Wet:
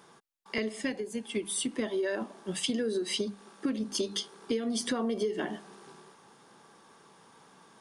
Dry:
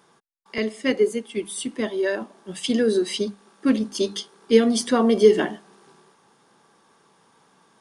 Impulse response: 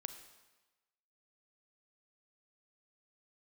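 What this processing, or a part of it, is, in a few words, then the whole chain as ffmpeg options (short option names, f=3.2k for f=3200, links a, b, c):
serial compression, peaks first: -filter_complex "[0:a]acompressor=threshold=-25dB:ratio=6,acompressor=threshold=-32dB:ratio=2,asettb=1/sr,asplit=3[a][b][c];[a]atrim=end=0.804[d];[b]atrim=start=0.8:end=1.27,asetpts=PTS-STARTPTS,afade=t=in:d=0.004:c=qsin,afade=t=out:st=0.466:d=0.004:c=qsin,aecho=1:1:1.2:0.49,atrim=end_sample=20727[e];[c]atrim=start=1.266[f];[d][e]acrossfade=d=0.004:c1=hsin:c2=qsin[g];[g][f]acrossfade=d=0.004:c1=qsin:c2=hsin,volume=1.5dB"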